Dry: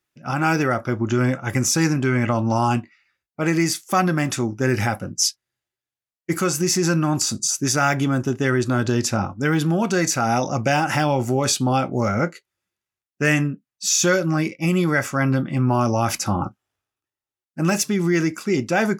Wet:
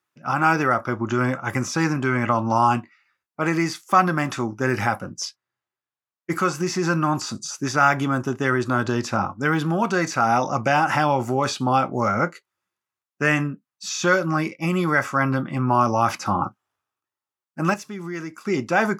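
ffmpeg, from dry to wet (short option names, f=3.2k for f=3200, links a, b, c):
-filter_complex "[0:a]asettb=1/sr,asplit=3[a][b][c];[a]atrim=end=5.254[d];[b]atrim=start=5.25:end=6.3,asetpts=PTS-STARTPTS,afade=t=in:d=0.004:c=qsin,afade=t=out:st=1.046:d=0.004:c=qsin,lowpass=f=3.4k:p=1[e];[c]atrim=start=6.296[f];[d][e]acrossfade=d=0.004:c1=hsin:c2=qsin[g];[g][f]acrossfade=d=0.004:c1=qsin:c2=hsin,asplit=3[h][i][j];[h]atrim=end=17.742[k];[i]atrim=start=17.738:end=18.452,asetpts=PTS-STARTPTS,volume=-9.5dB[l];[j]atrim=start=18.448[m];[k][l]acrossfade=d=0.004:c1=hsin:c2=hsin[n];[n][m]acrossfade=d=0.004:c1=hsin:c2=hsin,acrossover=split=5100[o][p];[p]acompressor=threshold=-38dB:ratio=4:attack=1:release=60[q];[o][q]amix=inputs=2:normalize=0,highpass=100,equalizer=f=1.1k:t=o:w=1:g=9.5,volume=-3dB"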